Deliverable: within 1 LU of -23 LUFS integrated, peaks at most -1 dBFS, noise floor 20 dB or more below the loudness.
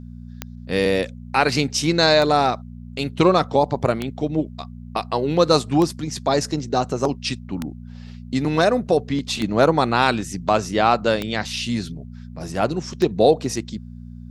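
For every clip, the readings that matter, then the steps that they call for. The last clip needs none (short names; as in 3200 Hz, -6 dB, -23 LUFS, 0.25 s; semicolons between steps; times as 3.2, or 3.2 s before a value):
clicks 8; hum 60 Hz; harmonics up to 240 Hz; hum level -34 dBFS; loudness -20.5 LUFS; peak -2.0 dBFS; loudness target -23.0 LUFS
-> de-click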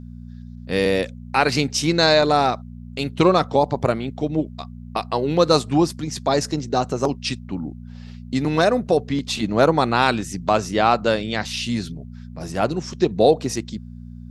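clicks 0; hum 60 Hz; harmonics up to 240 Hz; hum level -34 dBFS
-> de-hum 60 Hz, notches 4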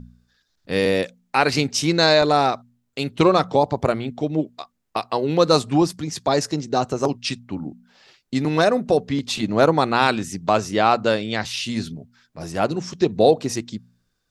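hum none; loudness -20.5 LUFS; peak -2.0 dBFS; loudness target -23.0 LUFS
-> gain -2.5 dB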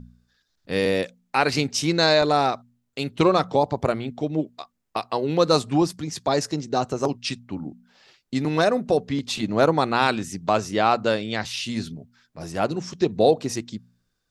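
loudness -23.0 LUFS; peak -4.5 dBFS; noise floor -74 dBFS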